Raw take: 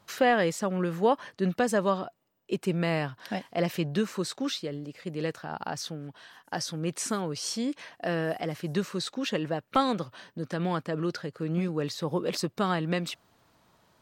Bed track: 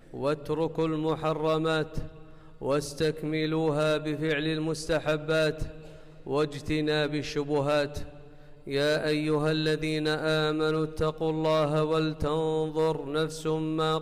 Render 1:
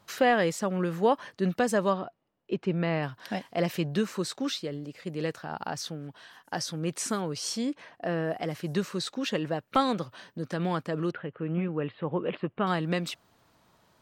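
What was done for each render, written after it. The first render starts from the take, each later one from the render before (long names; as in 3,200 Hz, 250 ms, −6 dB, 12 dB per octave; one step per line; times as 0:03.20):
0:01.93–0:03.03: high-frequency loss of the air 200 metres
0:07.69–0:08.40: high-shelf EQ 2,300 Hz → 3,200 Hz −10.5 dB
0:11.11–0:12.67: elliptic low-pass filter 3,000 Hz, stop band 50 dB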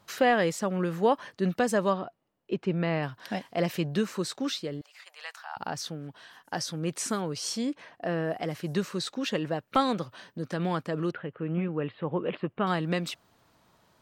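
0:04.81–0:05.57: Butterworth high-pass 780 Hz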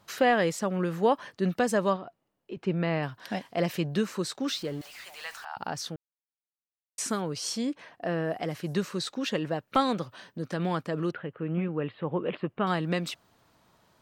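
0:01.96–0:02.57: downward compressor 2.5 to 1, threshold −37 dBFS
0:04.48–0:05.45: converter with a step at zero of −44.5 dBFS
0:05.96–0:06.98: silence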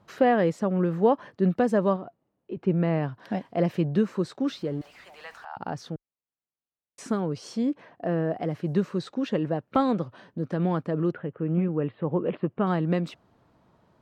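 high-pass filter 320 Hz 6 dB per octave
spectral tilt −4.5 dB per octave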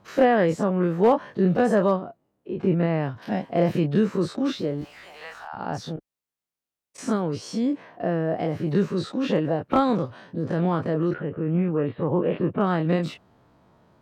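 every bin's largest magnitude spread in time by 60 ms
hard clipping −10 dBFS, distortion −31 dB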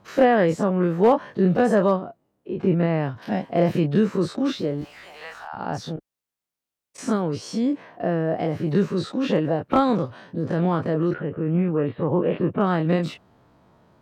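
level +1.5 dB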